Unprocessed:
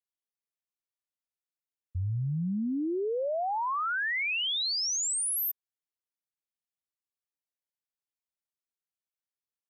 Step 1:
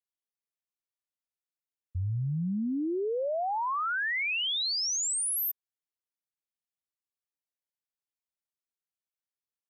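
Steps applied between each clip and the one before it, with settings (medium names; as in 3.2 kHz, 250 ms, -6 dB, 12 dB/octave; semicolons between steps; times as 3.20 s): no audible change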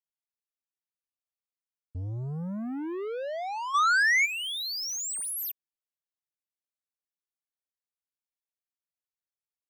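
waveshaping leveller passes 2; time-frequency box 3.75–4.26 s, 630–8400 Hz +11 dB; trim -4.5 dB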